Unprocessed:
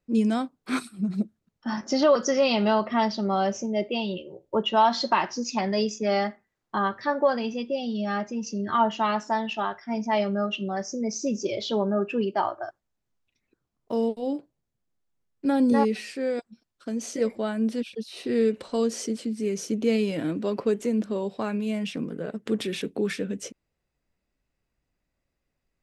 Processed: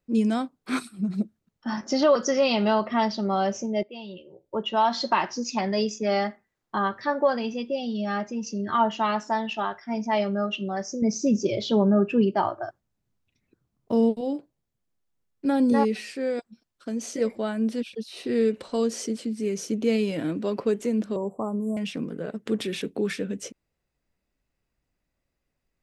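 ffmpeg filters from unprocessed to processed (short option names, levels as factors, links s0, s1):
-filter_complex "[0:a]asettb=1/sr,asplit=3[s0][s1][s2];[s0]atrim=end=11.024[s3];[s1]atrim=start=11.02:end=14.21,asetpts=PTS-STARTPTS,afade=t=in:d=0.004:c=qsin,afade=t=out:st=3.186:d=0.004:c=qsin,equalizer=f=120:w=0.5:g=10[s4];[s2]atrim=start=14.206[s5];[s3][s4]acrossfade=d=0.004:c1=hsin:c2=qsin[s6];[s6][s5]acrossfade=d=0.004:c1=qsin:c2=hsin,asettb=1/sr,asplit=3[s7][s8][s9];[s7]atrim=end=21.164[s10];[s8]atrim=start=21.16:end=21.77,asetpts=PTS-STARTPTS,afade=t=in:d=0.004:c=qsin,afade=t=out:st=0.606:d=0.004:c=qsin,asuperstop=centerf=3100:order=20:qfactor=0.51[s11];[s9]atrim=start=21.766[s12];[s10][s11]acrossfade=d=0.004:c1=hsin:c2=qsin[s13];[s13][s12]acrossfade=d=0.004:c1=qsin:c2=hsin,asplit=2[s14][s15];[s14]atrim=end=3.83,asetpts=PTS-STARTPTS,afade=t=out:st=3.826:d=0.004:c=hsin:silence=0.177828[s16];[s15]atrim=start=3.83,asetpts=PTS-STARTPTS,afade=t=in:d=1.36:silence=0.177828[s17];[s16][s17]concat=n=2:v=0:a=1"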